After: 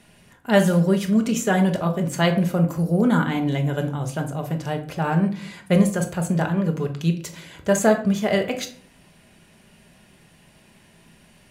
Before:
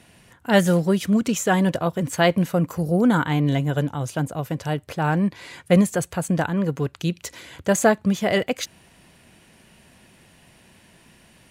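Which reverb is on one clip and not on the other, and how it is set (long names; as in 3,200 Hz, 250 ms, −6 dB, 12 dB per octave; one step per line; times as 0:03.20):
rectangular room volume 560 cubic metres, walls furnished, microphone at 1.3 metres
level −2.5 dB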